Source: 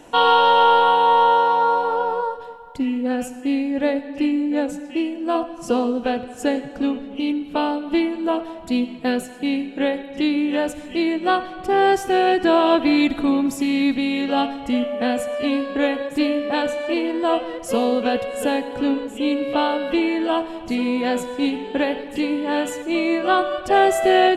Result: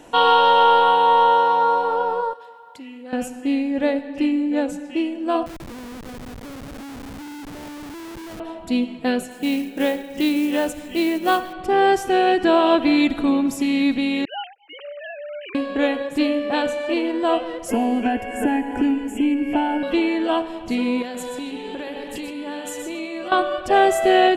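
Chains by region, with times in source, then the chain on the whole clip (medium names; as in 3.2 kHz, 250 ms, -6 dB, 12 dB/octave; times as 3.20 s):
2.33–3.13 s: high-pass 750 Hz 6 dB/octave + compression 2:1, threshold -40 dBFS
5.46–8.40 s: compression, threshold -31 dBFS + distance through air 410 m + Schmitt trigger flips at -36.5 dBFS
9.31–11.53 s: companded quantiser 6-bit + treble shelf 7.6 kHz +5 dB
14.25–15.55 s: formants replaced by sine waves + Bessel high-pass 1.6 kHz + expander -39 dBFS
17.70–19.83 s: bass shelf 250 Hz +7 dB + static phaser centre 790 Hz, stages 8 + three bands compressed up and down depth 100%
21.02–23.32 s: treble shelf 4.1 kHz +8.5 dB + compression 8:1, threshold -27 dBFS + delay 124 ms -7.5 dB
whole clip: none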